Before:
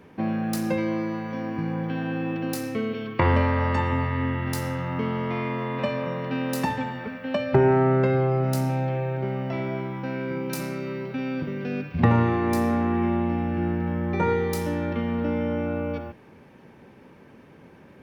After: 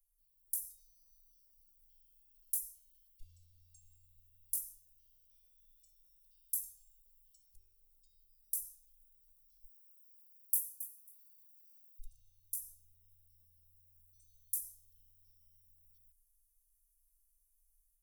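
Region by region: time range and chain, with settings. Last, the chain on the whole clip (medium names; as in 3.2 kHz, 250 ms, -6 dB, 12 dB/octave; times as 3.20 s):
9.63–11.99 s: differentiator + feedback delay 272 ms, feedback 15%, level -12.5 dB
whole clip: inverse Chebyshev band-stop 140–2000 Hz, stop band 80 dB; level rider gain up to 6 dB; comb 3.2 ms; trim -2 dB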